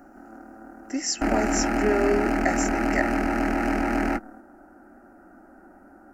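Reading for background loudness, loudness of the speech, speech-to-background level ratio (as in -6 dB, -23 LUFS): -25.0 LUFS, -27.5 LUFS, -2.5 dB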